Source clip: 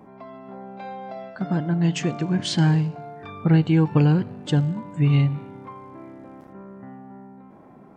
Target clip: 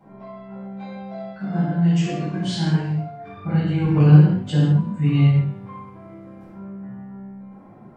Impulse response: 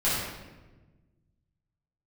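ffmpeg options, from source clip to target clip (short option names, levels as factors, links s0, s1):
-filter_complex "[0:a]asettb=1/sr,asplit=3[s0][s1][s2];[s0]atrim=end=1.314[s3];[s1]atrim=start=1.31:end=3.84,asetpts=PTS-STARTPTS,afade=t=in:d=0.004:c=qsin,afade=t=out:st=2.526:d=0.004:c=qsin,flanger=delay=20:depth=4.6:speed=1.3[s4];[s2]atrim=start=3.836[s5];[s3][s4]acrossfade=d=0.004:c1=hsin:c2=qsin[s6];[s6][s5]acrossfade=d=0.004:c1=qsin:c2=hsin[s7];[1:a]atrim=start_sample=2205,afade=t=out:st=0.27:d=0.01,atrim=end_sample=12348[s8];[s7][s8]afir=irnorm=-1:irlink=0,volume=0.282"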